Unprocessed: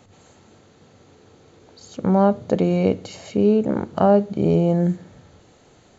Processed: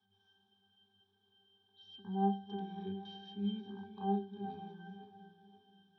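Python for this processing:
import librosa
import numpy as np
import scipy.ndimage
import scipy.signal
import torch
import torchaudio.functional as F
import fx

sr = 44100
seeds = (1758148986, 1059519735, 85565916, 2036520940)

p1 = fx.reverse_delay_fb(x, sr, ms=266, feedback_pct=57, wet_db=-12.0)
p2 = scipy.signal.sosfilt(scipy.signal.butter(2, 100.0, 'highpass', fs=sr, output='sos'), p1)
p3 = np.diff(p2, prepend=0.0)
p4 = np.where(np.abs(p3) >= 10.0 ** (-56.0 / 20.0), p3, 0.0)
p5 = p3 + (p4 * librosa.db_to_amplitude(-10.0))
p6 = fx.formant_shift(p5, sr, semitones=-3)
p7 = fx.fixed_phaser(p6, sr, hz=2000.0, stages=6)
p8 = fx.octave_resonator(p7, sr, note='G', decay_s=0.38)
p9 = fx.echo_stepped(p8, sr, ms=192, hz=3500.0, octaves=-0.7, feedback_pct=70, wet_db=-11.5)
y = p9 * librosa.db_to_amplitude(17.5)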